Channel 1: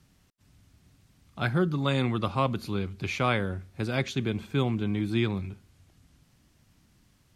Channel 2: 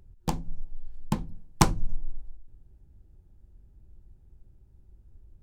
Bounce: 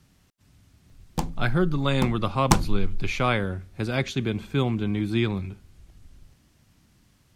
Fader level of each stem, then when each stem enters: +2.5 dB, +1.5 dB; 0.00 s, 0.90 s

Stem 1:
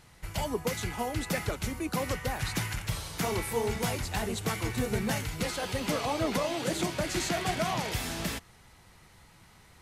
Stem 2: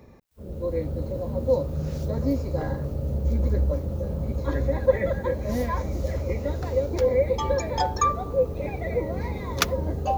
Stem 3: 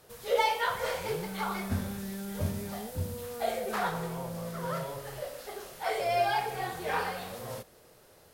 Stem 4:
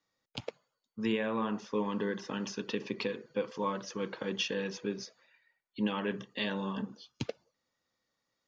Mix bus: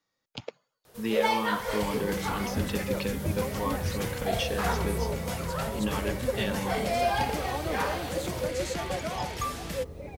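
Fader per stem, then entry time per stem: -4.5 dB, -11.0 dB, +0.5 dB, +1.0 dB; 1.45 s, 1.40 s, 0.85 s, 0.00 s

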